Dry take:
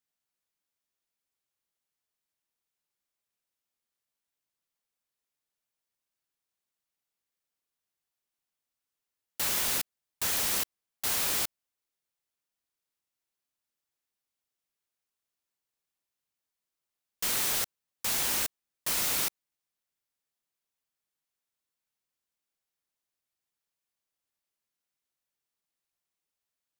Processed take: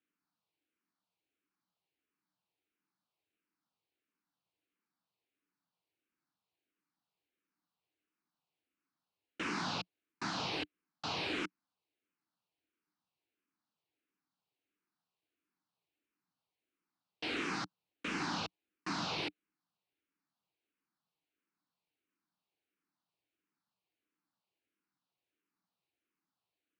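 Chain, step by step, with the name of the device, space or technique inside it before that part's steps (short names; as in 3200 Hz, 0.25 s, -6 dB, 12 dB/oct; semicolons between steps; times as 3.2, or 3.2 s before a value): barber-pole phaser into a guitar amplifier (endless phaser -1.5 Hz; soft clip -30.5 dBFS, distortion -12 dB; speaker cabinet 110–3900 Hz, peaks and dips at 180 Hz +6 dB, 300 Hz +10 dB, 570 Hz -6 dB, 1900 Hz -6 dB, 3400 Hz -6 dB); gain +6.5 dB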